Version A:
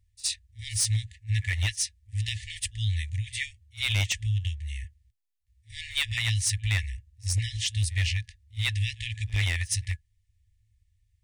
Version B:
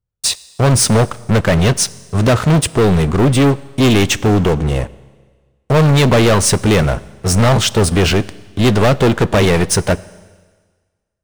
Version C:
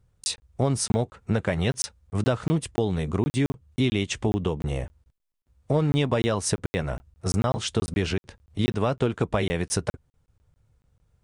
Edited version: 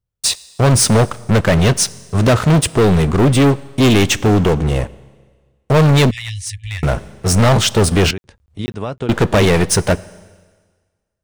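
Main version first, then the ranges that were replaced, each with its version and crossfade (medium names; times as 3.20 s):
B
6.11–6.83 s: from A
8.11–9.09 s: from C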